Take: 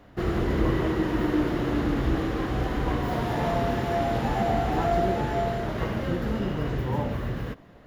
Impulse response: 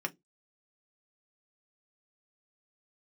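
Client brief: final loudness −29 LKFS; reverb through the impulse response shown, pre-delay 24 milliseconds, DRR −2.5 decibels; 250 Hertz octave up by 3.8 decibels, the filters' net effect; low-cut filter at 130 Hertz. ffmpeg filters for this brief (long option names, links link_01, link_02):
-filter_complex "[0:a]highpass=130,equalizer=frequency=250:width_type=o:gain=5.5,asplit=2[link_01][link_02];[1:a]atrim=start_sample=2205,adelay=24[link_03];[link_02][link_03]afir=irnorm=-1:irlink=0,volume=-1dB[link_04];[link_01][link_04]amix=inputs=2:normalize=0,volume=-8.5dB"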